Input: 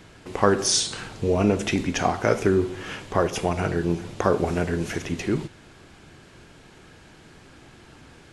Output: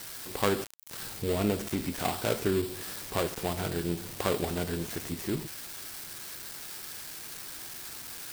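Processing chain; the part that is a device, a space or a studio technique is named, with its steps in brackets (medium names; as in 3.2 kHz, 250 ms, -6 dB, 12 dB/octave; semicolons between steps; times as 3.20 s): budget class-D amplifier (dead-time distortion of 0.23 ms; zero-crossing glitches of -16 dBFS); trim -7.5 dB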